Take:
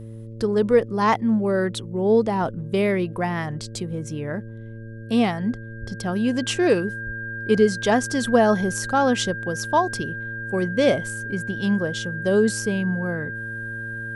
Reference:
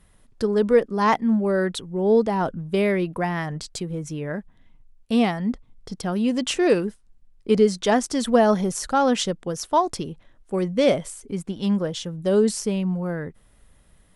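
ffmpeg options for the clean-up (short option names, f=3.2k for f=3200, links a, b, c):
-filter_complex "[0:a]bandreject=f=112.4:t=h:w=4,bandreject=f=224.8:t=h:w=4,bandreject=f=337.2:t=h:w=4,bandreject=f=449.6:t=h:w=4,bandreject=f=562:t=h:w=4,bandreject=f=1.6k:w=30,asplit=3[a][b][c];[a]afade=t=out:st=5.8:d=0.02[d];[b]highpass=f=140:w=0.5412,highpass=f=140:w=1.3066,afade=t=in:st=5.8:d=0.02,afade=t=out:st=5.92:d=0.02[e];[c]afade=t=in:st=5.92:d=0.02[f];[d][e][f]amix=inputs=3:normalize=0,asplit=3[g][h][i];[g]afade=t=out:st=7.05:d=0.02[j];[h]highpass=f=140:w=0.5412,highpass=f=140:w=1.3066,afade=t=in:st=7.05:d=0.02,afade=t=out:st=7.17:d=0.02[k];[i]afade=t=in:st=7.17:d=0.02[l];[j][k][l]amix=inputs=3:normalize=0"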